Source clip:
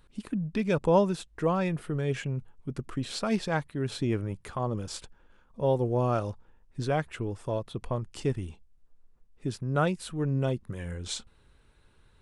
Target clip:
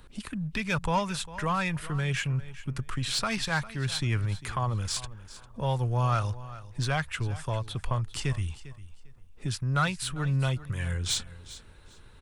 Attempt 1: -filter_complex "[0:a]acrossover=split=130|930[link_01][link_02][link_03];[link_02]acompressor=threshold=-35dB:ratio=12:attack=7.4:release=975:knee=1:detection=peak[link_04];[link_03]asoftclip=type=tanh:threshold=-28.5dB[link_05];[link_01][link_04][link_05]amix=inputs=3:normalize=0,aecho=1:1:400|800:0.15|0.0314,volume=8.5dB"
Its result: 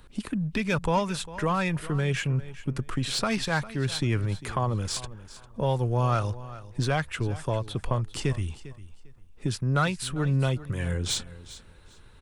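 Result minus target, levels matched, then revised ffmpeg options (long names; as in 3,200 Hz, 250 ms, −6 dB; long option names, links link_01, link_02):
downward compressor: peak gain reduction −10 dB
-filter_complex "[0:a]acrossover=split=130|930[link_01][link_02][link_03];[link_02]acompressor=threshold=-46dB:ratio=12:attack=7.4:release=975:knee=1:detection=peak[link_04];[link_03]asoftclip=type=tanh:threshold=-28.5dB[link_05];[link_01][link_04][link_05]amix=inputs=3:normalize=0,aecho=1:1:400|800:0.15|0.0314,volume=8.5dB"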